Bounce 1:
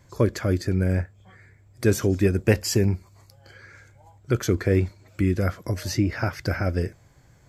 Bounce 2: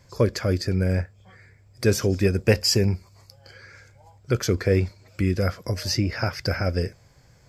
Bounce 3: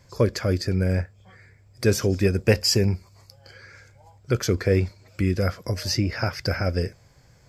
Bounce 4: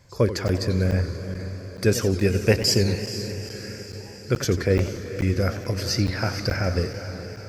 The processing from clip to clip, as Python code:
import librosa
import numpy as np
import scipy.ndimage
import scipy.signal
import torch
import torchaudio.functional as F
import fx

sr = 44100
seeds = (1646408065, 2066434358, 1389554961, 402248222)

y1 = fx.graphic_eq_31(x, sr, hz=(315, 500, 2500, 5000), db=(-5, 4, 3, 10))
y2 = y1
y3 = fx.echo_diffused(y2, sr, ms=453, feedback_pct=59, wet_db=-11.0)
y3 = fx.buffer_crackle(y3, sr, first_s=0.48, period_s=0.43, block=512, kind='zero')
y3 = fx.echo_warbled(y3, sr, ms=92, feedback_pct=58, rate_hz=2.8, cents=204, wet_db=-12.5)